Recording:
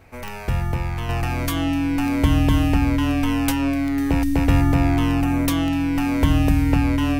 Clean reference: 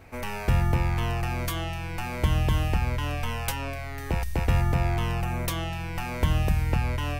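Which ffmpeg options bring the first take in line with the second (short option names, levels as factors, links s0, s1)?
-af "adeclick=t=4,bandreject=f=280:w=30,asetnsamples=n=441:p=0,asendcmd='1.09 volume volume -5dB',volume=1"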